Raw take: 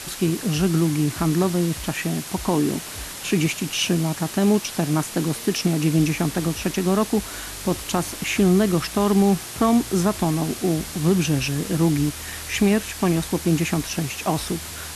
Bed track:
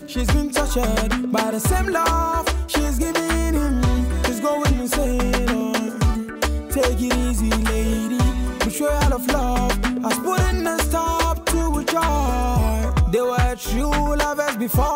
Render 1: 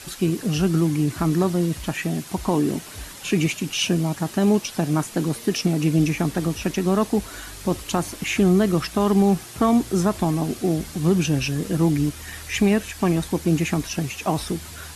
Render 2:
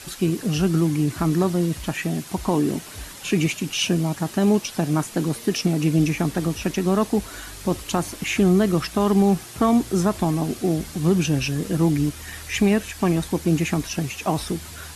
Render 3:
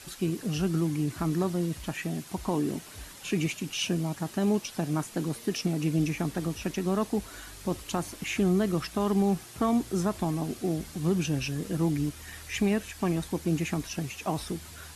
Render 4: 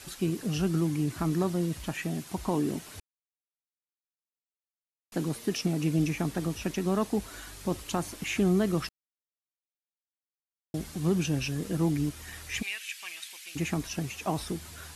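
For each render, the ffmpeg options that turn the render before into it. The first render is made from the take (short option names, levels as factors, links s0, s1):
-af "afftdn=nr=7:nf=-35"
-af anull
-af "volume=0.422"
-filter_complex "[0:a]asplit=3[s0][s1][s2];[s0]afade=t=out:st=12.61:d=0.02[s3];[s1]highpass=f=2500:t=q:w=2.2,afade=t=in:st=12.61:d=0.02,afade=t=out:st=13.55:d=0.02[s4];[s2]afade=t=in:st=13.55:d=0.02[s5];[s3][s4][s5]amix=inputs=3:normalize=0,asplit=5[s6][s7][s8][s9][s10];[s6]atrim=end=3,asetpts=PTS-STARTPTS,afade=t=out:st=2.996:d=0.004:c=hsin[s11];[s7]atrim=start=3:end=5.12,asetpts=PTS-STARTPTS,volume=0[s12];[s8]atrim=start=5.12:end=8.89,asetpts=PTS-STARTPTS,afade=t=in:d=0.004:c=hsin,afade=t=out:st=3.766:d=0.004:c=hsin[s13];[s9]atrim=start=8.89:end=10.74,asetpts=PTS-STARTPTS,volume=0[s14];[s10]atrim=start=10.74,asetpts=PTS-STARTPTS,afade=t=in:d=0.004:c=hsin[s15];[s11][s12][s13][s14][s15]concat=n=5:v=0:a=1"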